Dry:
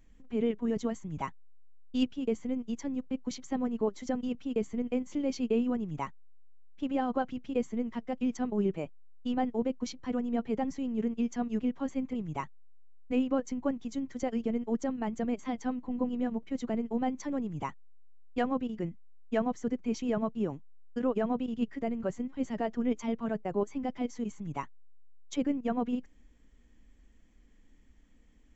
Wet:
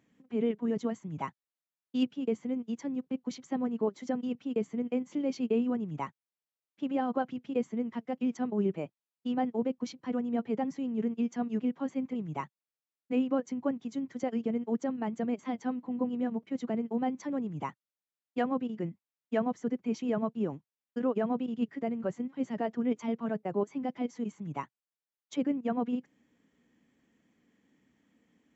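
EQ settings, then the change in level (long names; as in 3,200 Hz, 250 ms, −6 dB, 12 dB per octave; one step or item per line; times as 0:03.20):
high-pass filter 120 Hz 24 dB per octave
high-shelf EQ 5,200 Hz −8.5 dB
0.0 dB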